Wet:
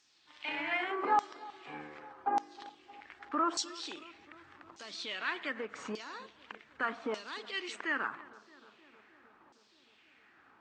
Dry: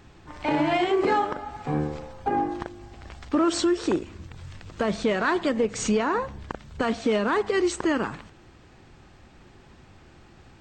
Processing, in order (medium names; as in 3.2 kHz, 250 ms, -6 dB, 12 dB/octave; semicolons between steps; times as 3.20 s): peaking EQ 270 Hz +6.5 dB 0.55 oct; LFO band-pass saw down 0.84 Hz 950–5900 Hz; filtered feedback delay 311 ms, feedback 77%, low-pass 1.6 kHz, level -19 dB